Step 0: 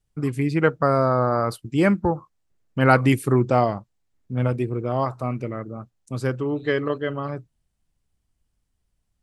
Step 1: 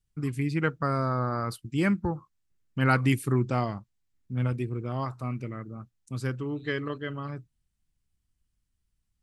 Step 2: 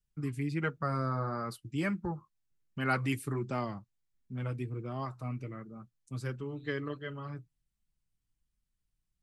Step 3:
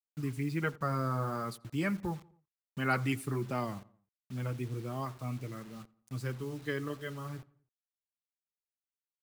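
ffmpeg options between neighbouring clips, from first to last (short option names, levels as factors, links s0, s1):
-af "equalizer=f=600:t=o:w=1.5:g=-9.5,volume=0.668"
-filter_complex "[0:a]acrossover=split=280|3100[s0][s1][s2];[s0]alimiter=level_in=1.26:limit=0.0631:level=0:latency=1,volume=0.794[s3];[s3][s1][s2]amix=inputs=3:normalize=0,flanger=delay=4.8:depth=2.3:regen=-35:speed=1.4:shape=sinusoidal,volume=0.794"
-filter_complex "[0:a]acrusher=bits=8:mix=0:aa=0.000001,asplit=2[s0][s1];[s1]adelay=86,lowpass=f=2200:p=1,volume=0.0794,asplit=2[s2][s3];[s3]adelay=86,lowpass=f=2200:p=1,volume=0.5,asplit=2[s4][s5];[s5]adelay=86,lowpass=f=2200:p=1,volume=0.5[s6];[s0][s2][s4][s6]amix=inputs=4:normalize=0"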